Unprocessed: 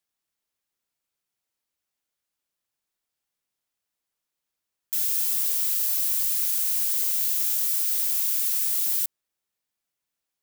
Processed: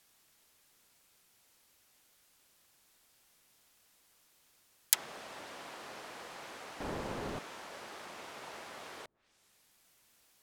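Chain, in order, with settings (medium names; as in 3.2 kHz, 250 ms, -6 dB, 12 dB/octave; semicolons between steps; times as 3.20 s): 6.80–7.39 s: jump at every zero crossing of -31.5 dBFS; low-pass that closes with the level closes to 660 Hz, closed at -25 dBFS; trim +17.5 dB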